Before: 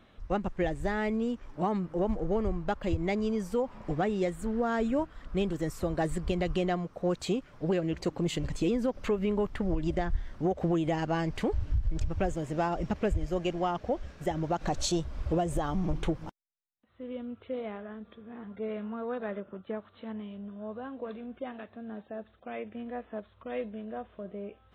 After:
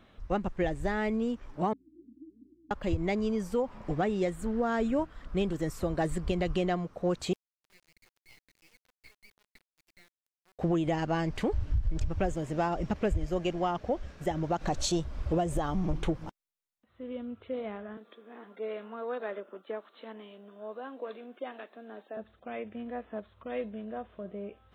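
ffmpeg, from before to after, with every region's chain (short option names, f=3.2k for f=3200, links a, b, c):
-filter_complex "[0:a]asettb=1/sr,asplit=3[a][b][c];[a]atrim=end=1.734[d];[b]atrim=start=1.73:end=2.71,asetpts=PTS-STARTPTS,afade=t=in:d=0.004:c=qsin,afade=t=out:st=0.976:d=0.004:c=qsin,asuperpass=centerf=280:order=8:qfactor=4.6,aeval=exprs='val(0)+0.0002*(sin(2*PI*60*n/s)+sin(2*PI*2*60*n/s)/2+sin(2*PI*3*60*n/s)/3+sin(2*PI*4*60*n/s)/4+sin(2*PI*5*60*n/s)/5)':c=same[e];[c]atrim=start=2.706[f];[d][e]acrossfade=d=0.004:c1=hsin:c2=qsin[g];[g][f]acrossfade=d=0.004:c1=qsin:c2=hsin,asettb=1/sr,asplit=3[h][i][j];[h]atrim=end=7.334[k];[i]atrim=start=7.33:end=10.59,asetpts=PTS-STARTPTS,afade=t=in:d=0.004:c=qsin,afade=t=out:st=3.256:d=0.004:c=qsin,bandpass=f=2.2k:t=q:w=17,acrusher=bits=7:dc=4:mix=0:aa=0.000001[l];[j]atrim=start=10.586[m];[k][l]acrossfade=d=0.004:c1=hsin:c2=qsin[n];[n][m]acrossfade=d=0.004:c1=qsin:c2=hsin,asettb=1/sr,asplit=3[o][p][q];[o]atrim=end=17.974[r];[p]atrim=start=17.97:end=22.17,asetpts=PTS-STARTPTS,afade=t=in:d=0.004:c=qsin,afade=t=out:st=4.196:d=0.004:c=qsin,highpass=f=290:w=0.5412,highpass=f=290:w=1.3066,highshelf=f=4.3k:g=6.5[s];[q]atrim=start=22.166[t];[r][s]acrossfade=d=0.004:c1=hsin:c2=qsin[u];[u][t]acrossfade=d=0.004:c1=qsin:c2=hsin"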